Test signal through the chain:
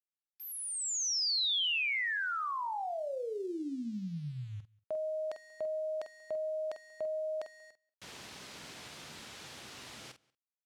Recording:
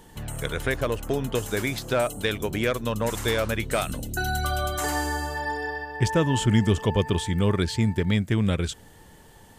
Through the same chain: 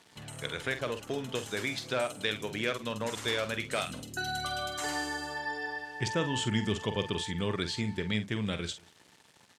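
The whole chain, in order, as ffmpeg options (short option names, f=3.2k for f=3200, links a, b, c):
-filter_complex "[0:a]aeval=exprs='val(0)*gte(abs(val(0)),0.00473)':c=same,crystalizer=i=4.5:c=0,highpass=120,lowpass=4.1k,asplit=2[a][b];[b]adelay=47,volume=-10dB[c];[a][c]amix=inputs=2:normalize=0,asplit=2[d][e];[e]adelay=186.6,volume=-26dB,highshelf=f=4k:g=-4.2[f];[d][f]amix=inputs=2:normalize=0,volume=-9dB"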